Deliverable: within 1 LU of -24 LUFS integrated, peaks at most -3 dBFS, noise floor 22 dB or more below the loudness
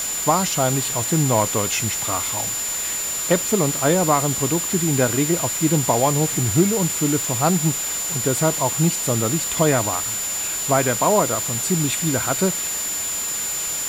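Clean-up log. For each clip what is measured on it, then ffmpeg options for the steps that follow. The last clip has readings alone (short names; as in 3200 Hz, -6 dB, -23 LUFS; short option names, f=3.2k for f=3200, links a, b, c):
steady tone 7100 Hz; tone level -24 dBFS; noise floor -26 dBFS; noise floor target -42 dBFS; loudness -19.5 LUFS; peak -3.5 dBFS; loudness target -24.0 LUFS
-> -af "bandreject=f=7.1k:w=30"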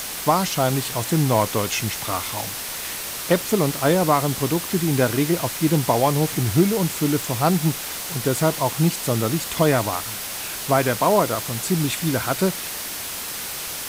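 steady tone none; noise floor -31 dBFS; noise floor target -44 dBFS
-> -af "afftdn=nr=13:nf=-31"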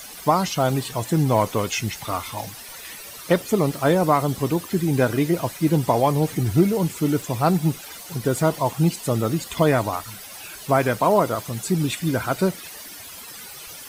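noise floor -39 dBFS; noise floor target -44 dBFS
-> -af "afftdn=nr=6:nf=-39"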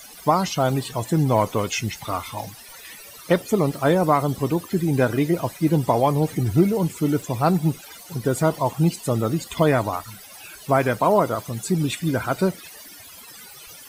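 noise floor -43 dBFS; noise floor target -44 dBFS
-> -af "afftdn=nr=6:nf=-43"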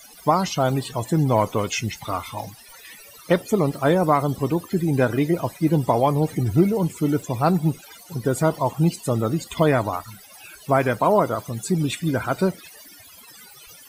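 noise floor -46 dBFS; loudness -22.0 LUFS; peak -4.5 dBFS; loudness target -24.0 LUFS
-> -af "volume=-2dB"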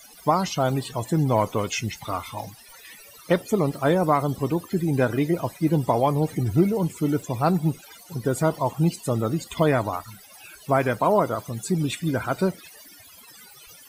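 loudness -24.0 LUFS; peak -6.5 dBFS; noise floor -48 dBFS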